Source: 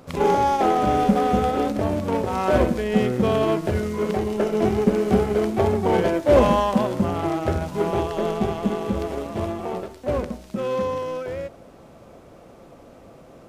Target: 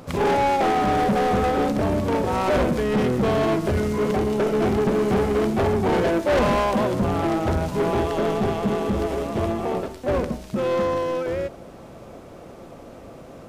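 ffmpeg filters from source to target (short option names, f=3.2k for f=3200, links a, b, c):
-filter_complex "[0:a]asplit=2[a][b];[b]asetrate=29433,aresample=44100,atempo=1.49831,volume=-10dB[c];[a][c]amix=inputs=2:normalize=0,asoftclip=type=tanh:threshold=-21dB,volume=4.5dB"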